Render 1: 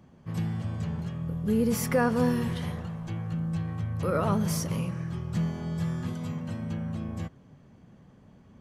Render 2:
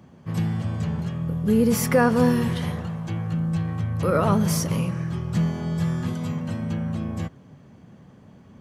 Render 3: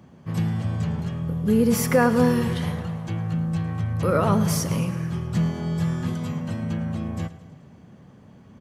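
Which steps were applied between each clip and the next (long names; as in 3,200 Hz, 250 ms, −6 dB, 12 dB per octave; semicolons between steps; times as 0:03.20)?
high-pass filter 70 Hz; level +6 dB
repeating echo 108 ms, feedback 60%, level −16.5 dB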